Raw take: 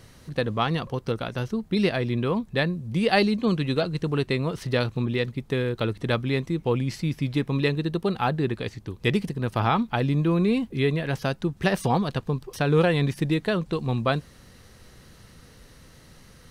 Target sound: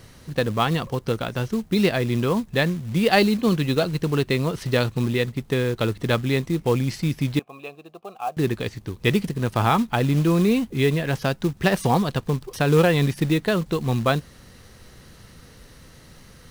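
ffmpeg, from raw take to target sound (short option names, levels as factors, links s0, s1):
-filter_complex "[0:a]asettb=1/sr,asplit=3[s0][s1][s2];[s0]atrim=end=7.394[s3];[s1]atrim=start=7.39:end=8.37,asetpts=PTS-STARTPTS,afade=t=in:d=0.004:c=qsin,afade=t=out:st=0.976:d=0.004:c=qsin,asplit=3[s4][s5][s6];[s4]bandpass=f=730:t=q:w=8,volume=1[s7];[s5]bandpass=f=1090:t=q:w=8,volume=0.501[s8];[s6]bandpass=f=2440:t=q:w=8,volume=0.355[s9];[s7][s8][s9]amix=inputs=3:normalize=0[s10];[s2]atrim=start=8.366[s11];[s3][s10]acrossfade=d=0.004:c1=hsin:c2=qsin[s12];[s12][s11]acrossfade=d=0.004:c1=qsin:c2=hsin,acrusher=bits=5:mode=log:mix=0:aa=0.000001,volume=1.41"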